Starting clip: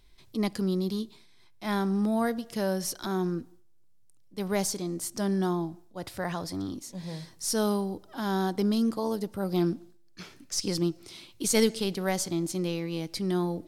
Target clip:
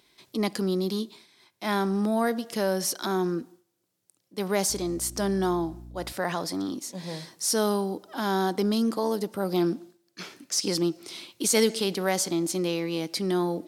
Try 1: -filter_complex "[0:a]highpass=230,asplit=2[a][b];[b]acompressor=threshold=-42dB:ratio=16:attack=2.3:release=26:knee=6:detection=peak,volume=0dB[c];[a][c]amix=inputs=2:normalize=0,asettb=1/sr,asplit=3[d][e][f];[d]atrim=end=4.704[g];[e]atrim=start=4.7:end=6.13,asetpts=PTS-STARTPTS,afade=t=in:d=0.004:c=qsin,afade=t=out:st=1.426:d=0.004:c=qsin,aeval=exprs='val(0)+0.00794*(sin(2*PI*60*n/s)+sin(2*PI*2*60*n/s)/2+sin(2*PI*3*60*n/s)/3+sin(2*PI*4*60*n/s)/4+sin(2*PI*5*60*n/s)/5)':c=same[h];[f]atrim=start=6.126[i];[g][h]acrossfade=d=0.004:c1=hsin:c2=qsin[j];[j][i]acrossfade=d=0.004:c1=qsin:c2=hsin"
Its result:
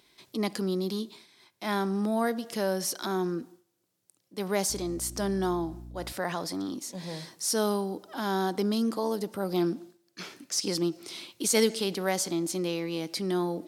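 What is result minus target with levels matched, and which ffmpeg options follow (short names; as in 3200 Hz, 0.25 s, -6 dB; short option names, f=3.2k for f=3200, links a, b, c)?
compressor: peak gain reduction +11.5 dB
-filter_complex "[0:a]highpass=230,asplit=2[a][b];[b]acompressor=threshold=-30dB:ratio=16:attack=2.3:release=26:knee=6:detection=peak,volume=0dB[c];[a][c]amix=inputs=2:normalize=0,asettb=1/sr,asplit=3[d][e][f];[d]atrim=end=4.704[g];[e]atrim=start=4.7:end=6.13,asetpts=PTS-STARTPTS,afade=t=in:d=0.004:c=qsin,afade=t=out:st=1.426:d=0.004:c=qsin,aeval=exprs='val(0)+0.00794*(sin(2*PI*60*n/s)+sin(2*PI*2*60*n/s)/2+sin(2*PI*3*60*n/s)/3+sin(2*PI*4*60*n/s)/4+sin(2*PI*5*60*n/s)/5)':c=same[h];[f]atrim=start=6.126[i];[g][h]acrossfade=d=0.004:c1=hsin:c2=qsin[j];[j][i]acrossfade=d=0.004:c1=qsin:c2=hsin"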